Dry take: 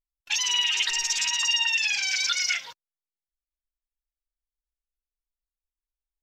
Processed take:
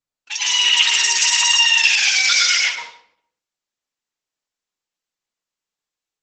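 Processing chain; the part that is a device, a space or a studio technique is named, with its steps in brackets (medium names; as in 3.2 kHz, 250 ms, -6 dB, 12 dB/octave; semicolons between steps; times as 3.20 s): 0.70–1.49 s: gate with hold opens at -18 dBFS; high-pass 210 Hz 24 dB/octave; speakerphone in a meeting room (reverberation RT60 0.65 s, pre-delay 98 ms, DRR -2 dB; level rider gain up to 9.5 dB; Opus 12 kbps 48 kHz)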